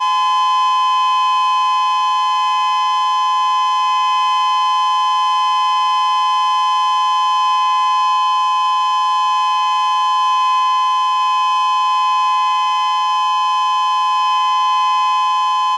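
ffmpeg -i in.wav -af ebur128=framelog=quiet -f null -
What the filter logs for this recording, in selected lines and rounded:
Integrated loudness:
  I:         -14.7 LUFS
  Threshold: -24.7 LUFS
Loudness range:
  LRA:         0.4 LU
  Threshold: -34.7 LUFS
  LRA low:   -14.9 LUFS
  LRA high:  -14.5 LUFS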